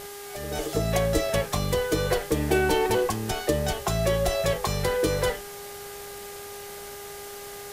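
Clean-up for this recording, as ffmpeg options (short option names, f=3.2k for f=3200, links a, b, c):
-af "adeclick=t=4,bandreject=f=405.4:t=h:w=4,bandreject=f=810.8:t=h:w=4,bandreject=f=1.2162k:t=h:w=4,bandreject=f=1.6216k:t=h:w=4,bandreject=f=2.027k:t=h:w=4,afftdn=nr=30:nf=-40"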